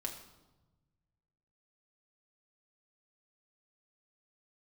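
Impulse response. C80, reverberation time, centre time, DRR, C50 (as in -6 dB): 10.0 dB, 1.1 s, 22 ms, 1.0 dB, 8.0 dB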